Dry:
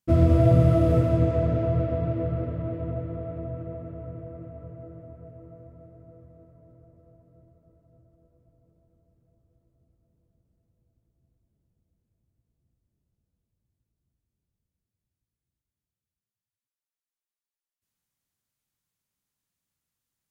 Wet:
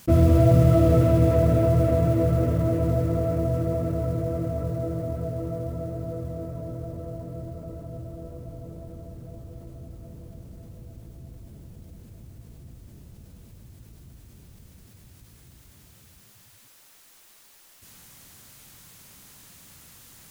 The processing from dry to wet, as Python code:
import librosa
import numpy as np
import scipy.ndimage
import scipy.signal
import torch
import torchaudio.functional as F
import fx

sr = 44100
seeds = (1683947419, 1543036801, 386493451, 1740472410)

y = fx.mod_noise(x, sr, seeds[0], snr_db=30)
y = fx.env_flatten(y, sr, amount_pct=50)